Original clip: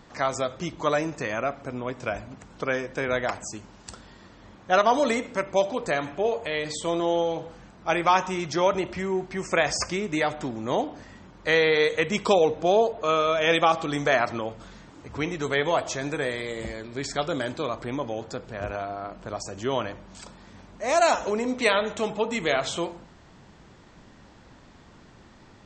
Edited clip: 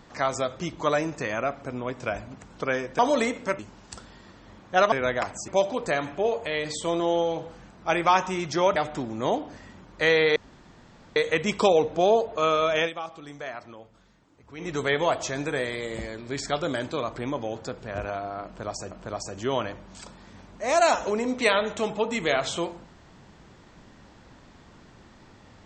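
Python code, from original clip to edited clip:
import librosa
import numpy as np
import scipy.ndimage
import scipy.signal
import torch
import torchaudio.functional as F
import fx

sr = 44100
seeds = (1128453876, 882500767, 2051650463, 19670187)

y = fx.edit(x, sr, fx.swap(start_s=2.99, length_s=0.56, other_s=4.88, other_length_s=0.6),
    fx.cut(start_s=8.76, length_s=1.46),
    fx.insert_room_tone(at_s=11.82, length_s=0.8),
    fx.fade_down_up(start_s=13.44, length_s=1.91, db=-14.5, fade_s=0.12),
    fx.repeat(start_s=19.11, length_s=0.46, count=2), tone=tone)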